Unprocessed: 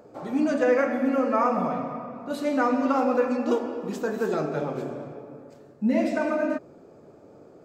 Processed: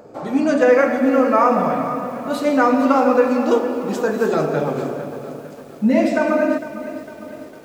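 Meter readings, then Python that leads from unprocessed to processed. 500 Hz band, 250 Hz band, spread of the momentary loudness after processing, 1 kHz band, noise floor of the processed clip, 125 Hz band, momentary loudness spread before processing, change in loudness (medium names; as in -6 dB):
+8.5 dB, +7.0 dB, 17 LU, +8.5 dB, -38 dBFS, +7.5 dB, 11 LU, +8.0 dB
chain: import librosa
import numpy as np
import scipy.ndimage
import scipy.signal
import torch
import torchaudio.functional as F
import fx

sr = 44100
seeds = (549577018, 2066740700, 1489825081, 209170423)

y = fx.hum_notches(x, sr, base_hz=60, count=7)
y = fx.echo_crushed(y, sr, ms=454, feedback_pct=55, bits=8, wet_db=-13)
y = y * 10.0 ** (8.0 / 20.0)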